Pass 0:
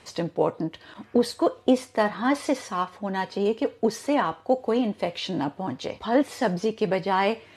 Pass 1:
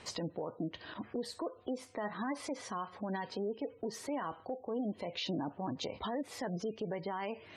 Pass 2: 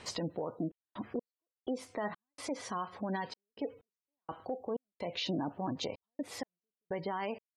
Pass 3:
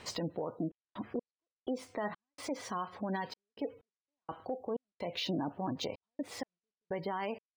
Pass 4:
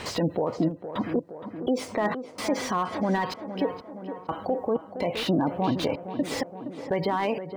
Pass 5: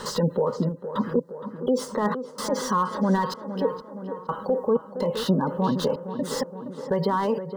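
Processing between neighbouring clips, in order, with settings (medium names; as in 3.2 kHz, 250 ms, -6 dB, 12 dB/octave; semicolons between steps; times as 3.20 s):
spectral gate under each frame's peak -25 dB strong; compression 4:1, threshold -32 dBFS, peak gain reduction 15 dB; peak limiter -27.5 dBFS, peak gain reduction 7.5 dB; trim -1 dB
trance gate "xxx.x..xx.x" 63 bpm -60 dB; trim +2 dB
median filter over 3 samples
in parallel at +2.5 dB: peak limiter -37 dBFS, peak gain reduction 10.5 dB; on the sum: tape echo 466 ms, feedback 75%, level -8 dB, low-pass 1.2 kHz; slew-rate limiter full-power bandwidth 44 Hz; trim +7.5 dB
static phaser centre 470 Hz, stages 8; trim +5 dB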